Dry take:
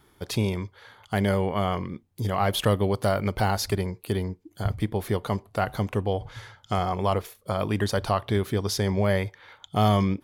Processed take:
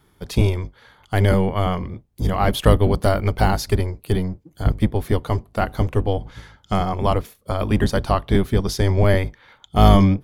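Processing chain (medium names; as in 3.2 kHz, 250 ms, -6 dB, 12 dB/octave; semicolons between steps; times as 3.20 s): octave divider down 1 oct, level +2 dB; upward expansion 1.5:1, over -30 dBFS; trim +7 dB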